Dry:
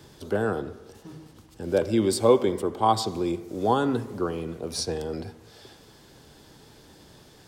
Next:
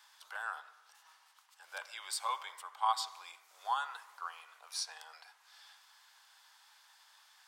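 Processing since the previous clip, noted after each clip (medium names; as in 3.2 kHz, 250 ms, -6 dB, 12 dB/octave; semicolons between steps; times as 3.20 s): steep high-pass 880 Hz 36 dB/octave; peaking EQ 1.4 kHz +3.5 dB 2.1 oct; trim -8 dB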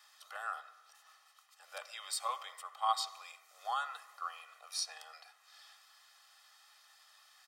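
comb 1.6 ms, depth 88%; trim -2 dB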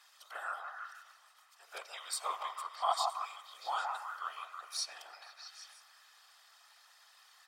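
whisper effect; on a send: repeats whose band climbs or falls 161 ms, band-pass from 880 Hz, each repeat 0.7 oct, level -2.5 dB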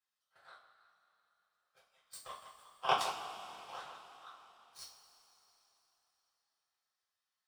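jump at every zero crossing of -40 dBFS; power-law waveshaper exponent 3; two-slope reverb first 0.37 s, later 3.8 s, from -17 dB, DRR -8 dB; trim +2.5 dB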